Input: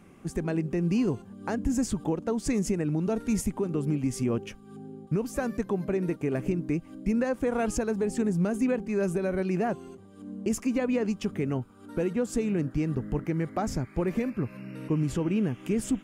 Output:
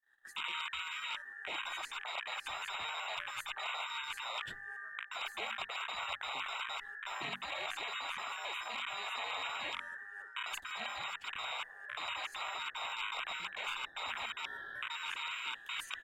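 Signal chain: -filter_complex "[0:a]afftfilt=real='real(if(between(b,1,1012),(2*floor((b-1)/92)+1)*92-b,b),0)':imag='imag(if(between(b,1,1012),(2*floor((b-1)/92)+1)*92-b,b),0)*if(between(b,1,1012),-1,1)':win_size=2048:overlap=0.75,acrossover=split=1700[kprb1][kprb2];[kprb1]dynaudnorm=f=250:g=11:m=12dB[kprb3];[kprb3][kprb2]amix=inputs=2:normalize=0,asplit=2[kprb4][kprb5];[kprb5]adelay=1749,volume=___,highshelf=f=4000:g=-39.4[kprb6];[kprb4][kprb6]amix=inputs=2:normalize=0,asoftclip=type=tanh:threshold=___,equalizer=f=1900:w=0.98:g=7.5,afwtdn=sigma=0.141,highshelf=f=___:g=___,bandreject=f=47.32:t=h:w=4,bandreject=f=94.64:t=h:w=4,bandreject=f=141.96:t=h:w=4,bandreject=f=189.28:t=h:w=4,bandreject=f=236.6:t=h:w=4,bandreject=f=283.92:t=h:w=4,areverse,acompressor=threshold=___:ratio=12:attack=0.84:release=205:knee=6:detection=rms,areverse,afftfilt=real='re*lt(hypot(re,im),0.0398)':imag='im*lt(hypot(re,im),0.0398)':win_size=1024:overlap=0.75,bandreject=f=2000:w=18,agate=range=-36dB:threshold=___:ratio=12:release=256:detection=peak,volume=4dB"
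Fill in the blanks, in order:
-25dB, -11dB, 8100, 8, -20dB, -59dB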